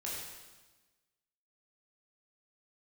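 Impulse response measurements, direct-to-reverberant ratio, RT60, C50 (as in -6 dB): -6.0 dB, 1.2 s, -0.5 dB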